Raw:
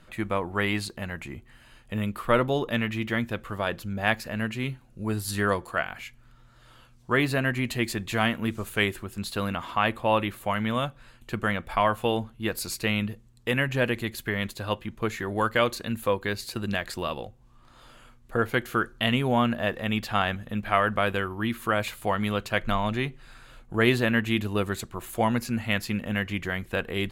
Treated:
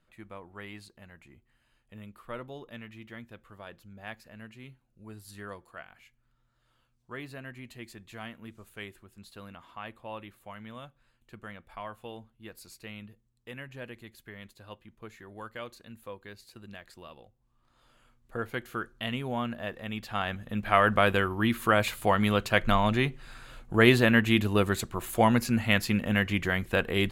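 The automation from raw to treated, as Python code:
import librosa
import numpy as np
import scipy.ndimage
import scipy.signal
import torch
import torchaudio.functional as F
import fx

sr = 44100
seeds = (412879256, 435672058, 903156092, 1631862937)

y = fx.gain(x, sr, db=fx.line((17.25, -17.5), (18.36, -9.0), (19.98, -9.0), (20.89, 2.0)))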